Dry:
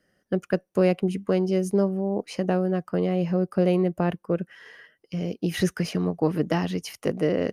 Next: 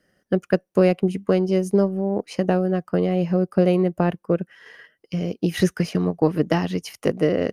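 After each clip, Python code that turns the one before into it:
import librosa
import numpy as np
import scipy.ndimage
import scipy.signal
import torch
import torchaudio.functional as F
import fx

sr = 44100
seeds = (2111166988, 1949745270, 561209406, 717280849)

y = fx.transient(x, sr, attack_db=2, sustain_db=-4)
y = F.gain(torch.from_numpy(y), 3.0).numpy()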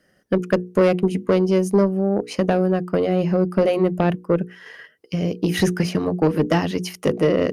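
y = fx.hum_notches(x, sr, base_hz=60, count=8)
y = fx.cheby_harmonics(y, sr, harmonics=(5,), levels_db=(-18,), full_scale_db=-5.0)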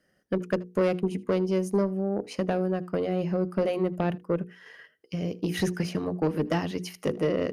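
y = x + 10.0 ** (-23.0 / 20.0) * np.pad(x, (int(79 * sr / 1000.0), 0))[:len(x)]
y = F.gain(torch.from_numpy(y), -8.0).numpy()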